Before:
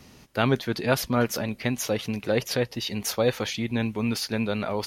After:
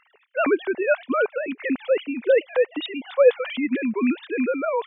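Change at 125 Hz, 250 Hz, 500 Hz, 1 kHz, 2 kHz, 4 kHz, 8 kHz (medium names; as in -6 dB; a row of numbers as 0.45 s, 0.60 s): under -20 dB, +2.0 dB, +7.0 dB, +2.0 dB, +4.0 dB, -6.0 dB, under -40 dB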